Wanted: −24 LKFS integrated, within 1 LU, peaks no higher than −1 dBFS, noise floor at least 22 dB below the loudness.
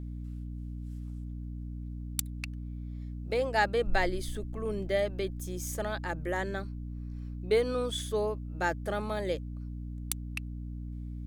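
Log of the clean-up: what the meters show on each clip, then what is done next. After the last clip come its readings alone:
mains hum 60 Hz; hum harmonics up to 300 Hz; level of the hum −36 dBFS; integrated loudness −34.0 LKFS; sample peak −10.5 dBFS; target loudness −24.0 LKFS
→ mains-hum notches 60/120/180/240/300 Hz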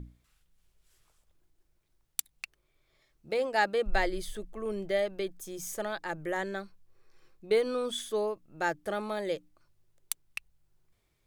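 mains hum none found; integrated loudness −33.0 LKFS; sample peak −10.5 dBFS; target loudness −24.0 LKFS
→ level +9 dB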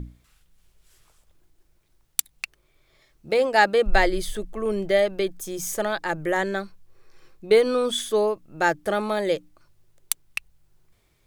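integrated loudness −24.0 LKFS; sample peak −1.5 dBFS; background noise floor −66 dBFS

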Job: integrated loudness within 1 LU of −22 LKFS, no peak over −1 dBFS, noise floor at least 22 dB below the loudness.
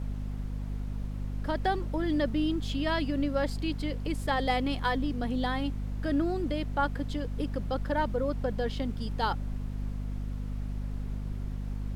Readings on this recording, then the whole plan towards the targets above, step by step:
mains hum 50 Hz; hum harmonics up to 250 Hz; level of the hum −32 dBFS; background noise floor −36 dBFS; target noise floor −54 dBFS; integrated loudness −32.0 LKFS; sample peak −14.5 dBFS; target loudness −22.0 LKFS
→ hum removal 50 Hz, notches 5
noise reduction from a noise print 18 dB
level +10 dB

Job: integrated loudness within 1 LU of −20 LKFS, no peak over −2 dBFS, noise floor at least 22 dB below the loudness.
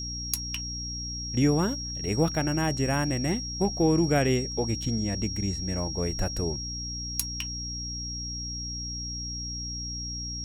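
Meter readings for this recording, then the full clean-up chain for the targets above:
mains hum 60 Hz; hum harmonics up to 300 Hz; level of the hum −35 dBFS; interfering tone 5,600 Hz; level of the tone −34 dBFS; integrated loudness −28.5 LKFS; sample peak −7.0 dBFS; target loudness −20.0 LKFS
→ hum removal 60 Hz, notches 5
notch filter 5,600 Hz, Q 30
level +8.5 dB
brickwall limiter −2 dBFS

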